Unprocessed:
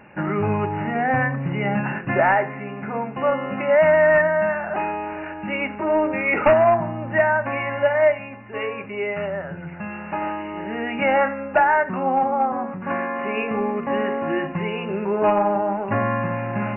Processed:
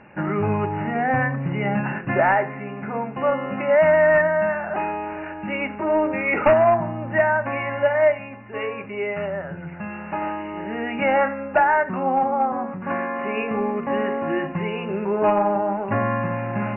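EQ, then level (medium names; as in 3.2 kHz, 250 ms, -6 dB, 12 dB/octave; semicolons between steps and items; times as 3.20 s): distance through air 120 m; 0.0 dB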